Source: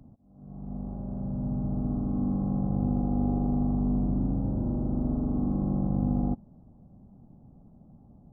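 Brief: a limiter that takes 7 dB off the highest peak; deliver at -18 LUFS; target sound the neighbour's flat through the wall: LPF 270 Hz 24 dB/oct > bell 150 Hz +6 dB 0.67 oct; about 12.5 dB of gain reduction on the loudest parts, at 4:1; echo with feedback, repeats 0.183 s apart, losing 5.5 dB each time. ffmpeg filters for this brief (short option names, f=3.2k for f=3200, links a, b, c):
-af "acompressor=threshold=-38dB:ratio=4,alimiter=level_in=11.5dB:limit=-24dB:level=0:latency=1,volume=-11.5dB,lowpass=f=270:w=0.5412,lowpass=f=270:w=1.3066,equalizer=f=150:t=o:w=0.67:g=6,aecho=1:1:183|366|549|732|915|1098|1281:0.531|0.281|0.149|0.079|0.0419|0.0222|0.0118,volume=22dB"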